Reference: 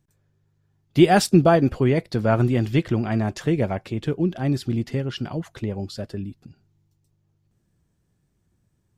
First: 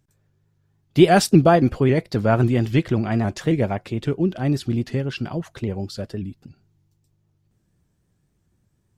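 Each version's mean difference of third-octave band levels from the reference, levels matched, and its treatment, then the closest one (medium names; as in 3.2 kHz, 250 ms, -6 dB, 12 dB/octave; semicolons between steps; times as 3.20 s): 1.0 dB: vibrato with a chosen wave saw up 3.7 Hz, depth 100 cents; trim +1.5 dB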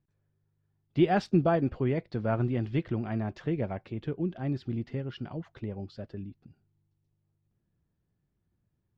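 2.5 dB: distance through air 220 m; trim -8.5 dB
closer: first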